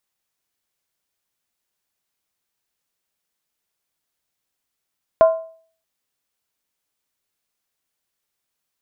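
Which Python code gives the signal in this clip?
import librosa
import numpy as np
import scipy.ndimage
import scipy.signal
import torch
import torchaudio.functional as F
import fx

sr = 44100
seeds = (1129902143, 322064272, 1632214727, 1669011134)

y = fx.strike_skin(sr, length_s=0.63, level_db=-5.5, hz=651.0, decay_s=0.48, tilt_db=11, modes=5)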